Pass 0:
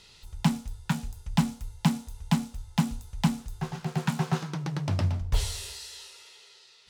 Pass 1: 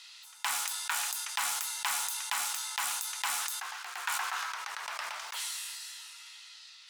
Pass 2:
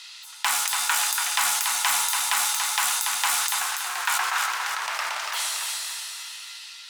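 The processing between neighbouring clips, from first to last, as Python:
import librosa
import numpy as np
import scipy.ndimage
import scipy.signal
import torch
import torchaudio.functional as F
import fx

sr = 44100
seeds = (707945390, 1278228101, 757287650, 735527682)

y1 = scipy.signal.sosfilt(scipy.signal.butter(4, 1100.0, 'highpass', fs=sr, output='sos'), x)
y1 = fx.dynamic_eq(y1, sr, hz=4600.0, q=0.71, threshold_db=-52.0, ratio=4.0, max_db=-7)
y1 = fx.sustainer(y1, sr, db_per_s=22.0)
y1 = F.gain(torch.from_numpy(y1), 4.0).numpy()
y2 = fx.echo_feedback(y1, sr, ms=285, feedback_pct=43, wet_db=-5.0)
y2 = F.gain(torch.from_numpy(y2), 8.5).numpy()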